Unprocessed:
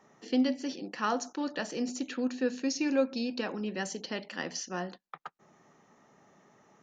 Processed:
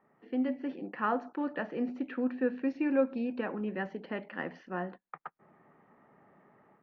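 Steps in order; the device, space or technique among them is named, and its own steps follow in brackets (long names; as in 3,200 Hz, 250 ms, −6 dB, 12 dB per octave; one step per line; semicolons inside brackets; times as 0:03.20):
action camera in a waterproof case (low-pass filter 2,200 Hz 24 dB per octave; automatic gain control gain up to 7 dB; level −7 dB; AAC 64 kbit/s 16,000 Hz)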